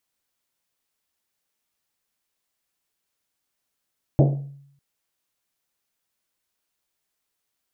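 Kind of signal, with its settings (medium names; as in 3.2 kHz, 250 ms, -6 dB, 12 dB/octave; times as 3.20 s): Risset drum length 0.60 s, pitch 140 Hz, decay 0.74 s, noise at 470 Hz, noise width 460 Hz, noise 25%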